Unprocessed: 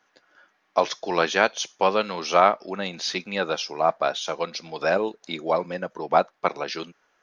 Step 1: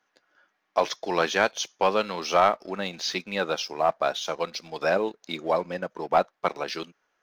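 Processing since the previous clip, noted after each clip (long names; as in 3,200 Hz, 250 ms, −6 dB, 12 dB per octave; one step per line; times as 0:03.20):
leveller curve on the samples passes 1
level −5 dB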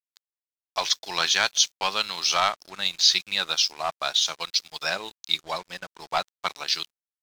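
graphic EQ with 10 bands 250 Hz −12 dB, 500 Hz −11 dB, 4,000 Hz +11 dB, 8,000 Hz +11 dB
dead-zone distortion −45 dBFS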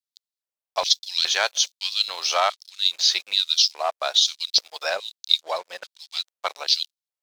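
auto-filter high-pass square 1.2 Hz 540–3,900 Hz
level −1 dB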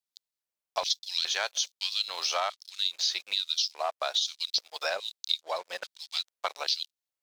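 downward compressor 3 to 1, threshold −28 dBFS, peak gain reduction 12.5 dB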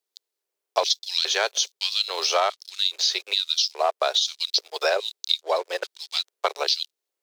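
high-pass with resonance 400 Hz, resonance Q 4.8
level +5.5 dB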